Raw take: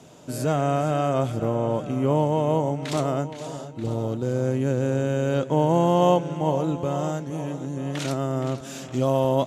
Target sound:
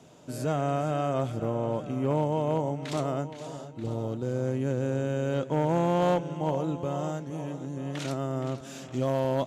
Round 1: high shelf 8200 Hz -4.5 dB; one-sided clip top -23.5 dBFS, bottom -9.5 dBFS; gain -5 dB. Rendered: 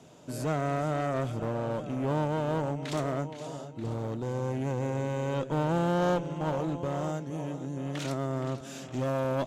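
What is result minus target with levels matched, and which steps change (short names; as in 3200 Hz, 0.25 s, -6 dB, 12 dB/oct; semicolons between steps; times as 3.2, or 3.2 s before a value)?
one-sided clip: distortion +11 dB
change: one-sided clip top -14 dBFS, bottom -9.5 dBFS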